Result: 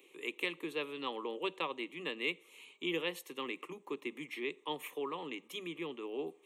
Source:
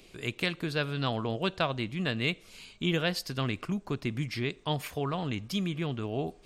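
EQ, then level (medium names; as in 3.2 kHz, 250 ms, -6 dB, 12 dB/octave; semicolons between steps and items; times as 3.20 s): steep high-pass 170 Hz 72 dB/octave; static phaser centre 1 kHz, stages 8; -3.5 dB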